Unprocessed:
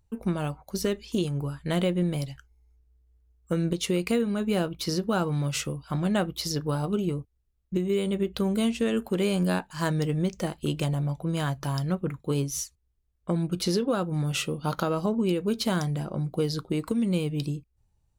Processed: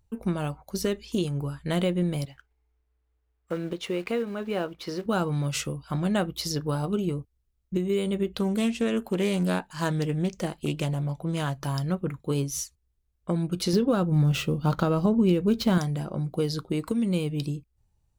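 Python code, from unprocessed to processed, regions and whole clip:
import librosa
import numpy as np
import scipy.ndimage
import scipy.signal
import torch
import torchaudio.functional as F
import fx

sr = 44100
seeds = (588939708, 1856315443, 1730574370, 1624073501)

y = fx.chain(x, sr, fx.block_float(bits=5),
    fx.bass_treble(bass_db=-11, treble_db=-14), at=(2.25, 5.06))
y = fx.chain(y, sr, fx.peak_eq(hz=76.0, db=-12.5, octaves=0.54),
    fx.doppler_dist(depth_ms=0.13), at=(8.34, 11.63))
y = fx.chain(y, sr, fx.median_filter(points=5),
    fx.low_shelf(hz=210.0, db=10.0), at=(13.73, 15.78))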